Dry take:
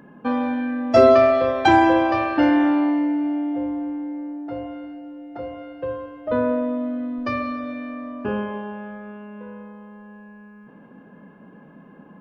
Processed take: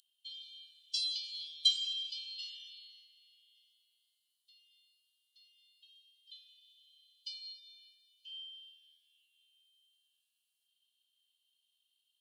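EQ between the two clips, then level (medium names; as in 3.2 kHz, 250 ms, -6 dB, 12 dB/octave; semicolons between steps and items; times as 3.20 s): rippled Chebyshev high-pass 3 kHz, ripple 9 dB; +8.0 dB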